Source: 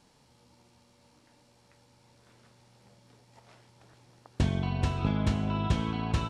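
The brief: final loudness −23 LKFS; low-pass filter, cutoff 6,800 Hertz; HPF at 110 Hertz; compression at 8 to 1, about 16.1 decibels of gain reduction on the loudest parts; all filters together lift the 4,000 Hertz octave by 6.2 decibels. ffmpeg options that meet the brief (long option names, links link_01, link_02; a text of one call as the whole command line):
ffmpeg -i in.wav -af "highpass=110,lowpass=6800,equalizer=frequency=4000:width_type=o:gain=8.5,acompressor=threshold=-41dB:ratio=8,volume=25dB" out.wav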